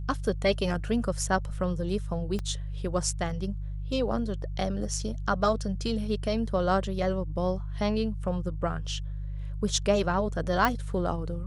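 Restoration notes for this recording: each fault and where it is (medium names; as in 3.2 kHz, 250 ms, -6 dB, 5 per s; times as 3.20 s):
hum 50 Hz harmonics 3 -34 dBFS
2.39 s: pop -21 dBFS
10.65 s: pop -10 dBFS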